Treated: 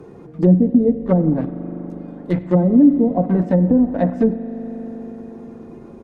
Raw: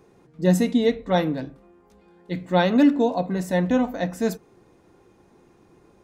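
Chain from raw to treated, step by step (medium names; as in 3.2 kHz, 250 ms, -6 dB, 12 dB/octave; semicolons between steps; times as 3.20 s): coarse spectral quantiser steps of 15 dB; in parallel at -3.5 dB: small samples zeroed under -27 dBFS; on the sum: tilt shelf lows +5 dB, about 1.1 kHz; low-pass that closes with the level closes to 360 Hz, closed at -9.5 dBFS; delay 94 ms -22.5 dB; on a send at -13 dB: reverberation RT60 3.6 s, pre-delay 40 ms; on the sum: three bands compressed up and down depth 40%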